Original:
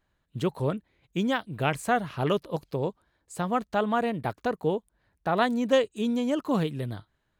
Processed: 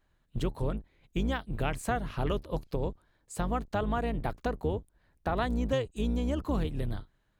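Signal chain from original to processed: octave divider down 2 oct, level +3 dB; compression 2.5:1, threshold -29 dBFS, peak gain reduction 9 dB

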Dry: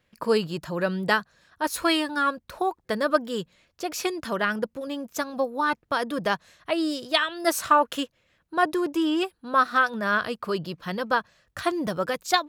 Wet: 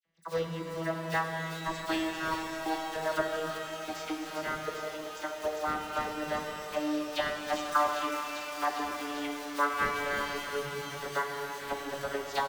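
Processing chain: vocoder on a note that slides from E3, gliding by -3 st; high-pass 830 Hz 6 dB/octave; comb 5.1 ms, depth 37%; in parallel at -10.5 dB: decimation with a swept rate 26×, swing 160% 3.2 Hz; on the sum: phase dispersion lows, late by 43 ms, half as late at 2.4 kHz; on a send: feedback echo behind a high-pass 399 ms, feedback 84%, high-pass 4 kHz, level -4 dB; on the sum: pitch-shifted reverb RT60 3.9 s, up +12 st, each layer -8 dB, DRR 2 dB; trim -4.5 dB

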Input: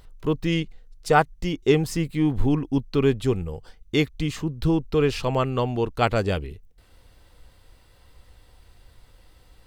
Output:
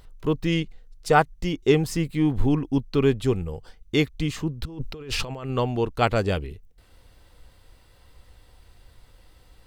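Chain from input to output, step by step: 4.65–5.50 s: compressor with a negative ratio -33 dBFS, ratio -1

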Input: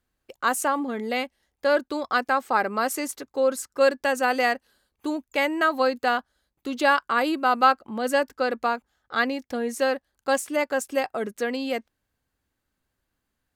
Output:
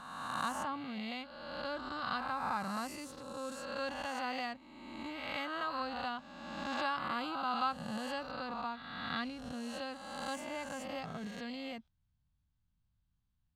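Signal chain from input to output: reverse spectral sustain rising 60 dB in 1.58 s; FFT filter 160 Hz 0 dB, 410 Hz -27 dB, 1 kHz -14 dB, 1.8 kHz -22 dB, 3.5 kHz -12 dB, 11 kHz -28 dB

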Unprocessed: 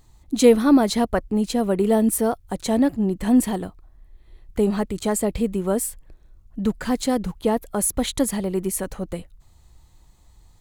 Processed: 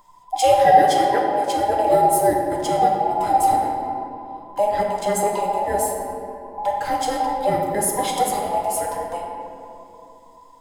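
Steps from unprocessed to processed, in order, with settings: every band turned upside down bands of 1 kHz; 0.78–1.57 s: high-pass 250 Hz 12 dB/octave; reverberation RT60 2.7 s, pre-delay 7 ms, DRR -1.5 dB; trim -2 dB

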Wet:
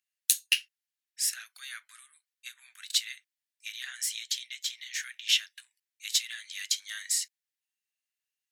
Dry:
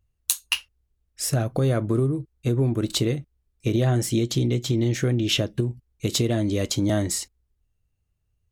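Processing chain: elliptic high-pass 1.7 kHz, stop band 80 dB

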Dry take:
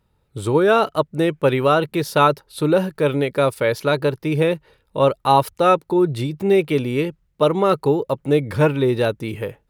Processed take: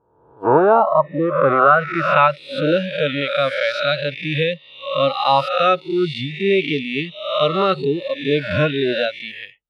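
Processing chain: reverse spectral sustain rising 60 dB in 1.10 s; low-pass sweep 940 Hz -> 3.4 kHz, 1.18–2.68 s; spectral noise reduction 27 dB; trim -2 dB

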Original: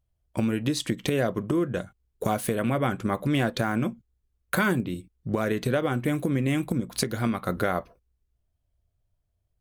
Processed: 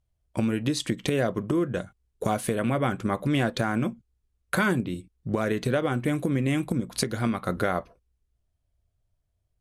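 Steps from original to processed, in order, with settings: low-pass 12 kHz 24 dB/octave

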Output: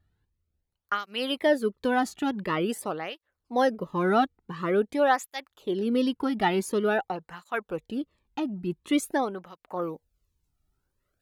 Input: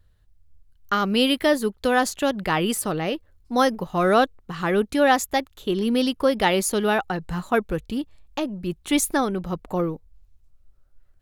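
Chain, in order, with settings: treble shelf 3.5 kHz -9 dB, from 9.82 s +4 dB; cancelling through-zero flanger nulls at 0.47 Hz, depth 2 ms; trim -1.5 dB

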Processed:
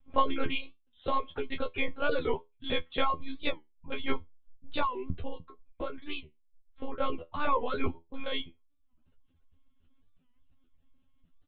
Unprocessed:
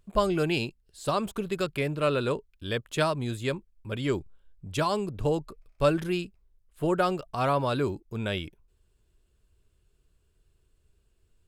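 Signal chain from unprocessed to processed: comb 2.1 ms, depth 90%; 4.85–7.01 s: compression 16:1, threshold -26 dBFS, peak gain reduction 13 dB; monotone LPC vocoder at 8 kHz 270 Hz; feedback comb 83 Hz, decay 0.19 s, harmonics all, mix 100%; reverb removal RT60 0.73 s; warped record 45 rpm, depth 160 cents; trim +3.5 dB

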